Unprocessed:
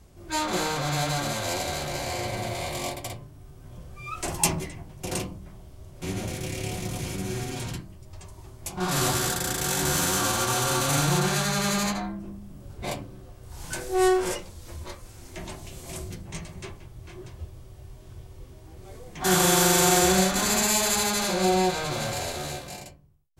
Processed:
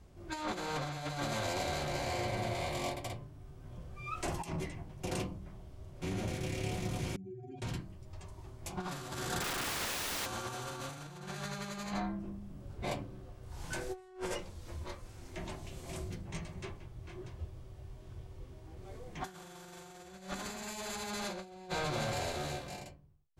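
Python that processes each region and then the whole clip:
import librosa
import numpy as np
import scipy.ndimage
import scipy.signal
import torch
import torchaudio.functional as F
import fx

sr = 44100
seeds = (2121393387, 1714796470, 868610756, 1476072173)

y = fx.chain(x, sr, fx.spec_expand(power=2.9),
    fx.highpass(hz=880.0, slope=6),
    fx.env_flatten(amount_pct=50), at=(7.16, 7.62))
y = fx.chain(y, sr, fx.peak_eq(hz=1300.0, db=12.5, octaves=0.53),
    fx.overflow_wrap(gain_db=23.0), at=(9.41, 10.26))
y = fx.lowpass(y, sr, hz=3900.0, slope=6)
y = fx.over_compress(y, sr, threshold_db=-30.0, ratio=-0.5)
y = F.gain(torch.from_numpy(y), -7.5).numpy()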